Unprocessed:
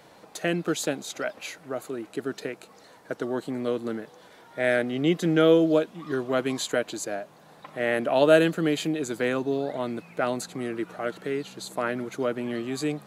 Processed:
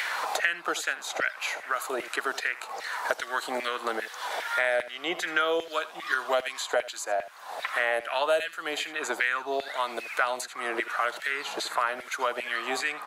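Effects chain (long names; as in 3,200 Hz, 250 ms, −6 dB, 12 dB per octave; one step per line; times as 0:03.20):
auto-filter high-pass saw down 2.5 Hz 630–2,100 Hz
single-tap delay 78 ms −17.5 dB
multiband upward and downward compressor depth 100%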